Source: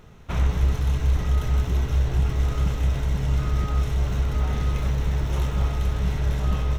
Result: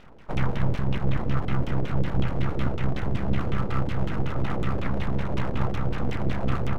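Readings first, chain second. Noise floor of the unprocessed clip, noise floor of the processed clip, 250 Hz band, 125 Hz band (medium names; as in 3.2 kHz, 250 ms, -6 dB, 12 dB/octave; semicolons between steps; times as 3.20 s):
-30 dBFS, -29 dBFS, +4.0 dB, -4.0 dB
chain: Chebyshev shaper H 4 -21 dB, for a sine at -10 dBFS; LFO low-pass saw down 5.4 Hz 330–3300 Hz; full-wave rectifier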